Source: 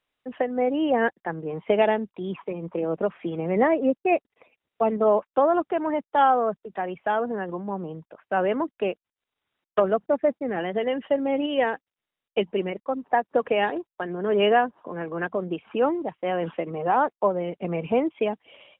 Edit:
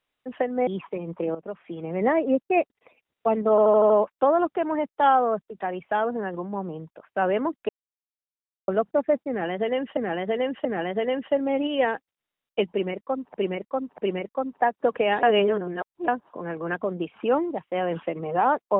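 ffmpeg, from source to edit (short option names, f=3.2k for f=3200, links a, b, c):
-filter_complex "[0:a]asplit=16[a][b][c][d][e][f][g][h][i][j][k][l][m][n][o][p];[a]atrim=end=0.672[q];[b]atrim=start=2.218:end=2.9,asetpts=PTS-STARTPTS,afade=t=out:st=0.678:d=0.004:c=hsin:silence=0.199526[r];[c]atrim=start=2.9:end=5.132,asetpts=PTS-STARTPTS,afade=t=in:d=0.93:silence=0.199526[s];[d]atrim=start=5.048:end=5.132[t];[e]atrim=start=5.048:end=5.132[u];[f]atrim=start=5.048:end=5.132[v];[g]atrim=start=5.048:end=5.132[w];[h]atrim=start=5.048:end=8.84,asetpts=PTS-STARTPTS,afade=t=out:st=3.788:d=0.004:c=hsin[x];[i]atrim=start=8.84:end=9.83,asetpts=PTS-STARTPTS,volume=0[y];[j]atrim=start=9.83:end=11.122,asetpts=PTS-STARTPTS,afade=t=in:d=0.004:c=hsin[z];[k]atrim=start=10.438:end=11.122[aa];[l]atrim=start=10.438:end=13.132[ab];[m]atrim=start=12.488:end=13.132[ac];[n]atrim=start=12.488:end=13.742[ad];[o]atrim=start=13.738:end=14.592,asetpts=PTS-STARTPTS,areverse[ae];[p]atrim=start=14.588[af];[r][s]concat=n=2:v=0:a=1[ag];[q][ag]acrossfade=d=0.004:c1=hsin:c2=hsin[ah];[ah][t]acrossfade=d=0.004:c1=hsin:c2=hsin[ai];[ai][u]acrossfade=d=0.004:c1=hsin:c2=hsin[aj];[aj][v]acrossfade=d=0.004:c1=hsin:c2=hsin[ak];[ak][w]acrossfade=d=0.004:c1=hsin:c2=hsin[al];[x][y][z]concat=n=3:v=0:a=1[am];[al][am]acrossfade=d=0.004:c1=hsin:c2=hsin[an];[an][aa]acrossfade=d=0.004:c1=hsin:c2=hsin[ao];[ao][ab]acrossfade=d=0.004:c1=hsin:c2=hsin[ap];[ap][ac]acrossfade=d=0.004:c1=hsin:c2=hsin[aq];[aq][ad]acrossfade=d=0.004:c1=hsin:c2=hsin[ar];[ar][ae]acrossfade=d=0.004:c1=hsin:c2=hsin[as];[as][af]acrossfade=d=0.004:c1=hsin:c2=hsin"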